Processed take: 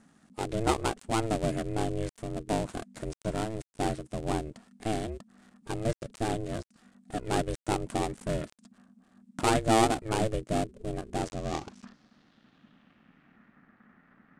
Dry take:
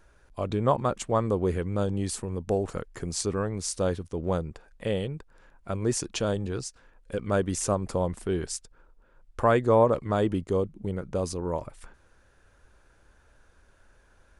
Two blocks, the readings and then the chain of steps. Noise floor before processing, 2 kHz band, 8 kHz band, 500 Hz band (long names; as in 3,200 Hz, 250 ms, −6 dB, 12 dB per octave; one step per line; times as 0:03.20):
−61 dBFS, +1.0 dB, −5.0 dB, −5.5 dB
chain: gap after every zero crossing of 0.2 ms
low-pass filter sweep 8,700 Hz → 1,800 Hz, 0:11.11–0:13.65
ring modulation 220 Hz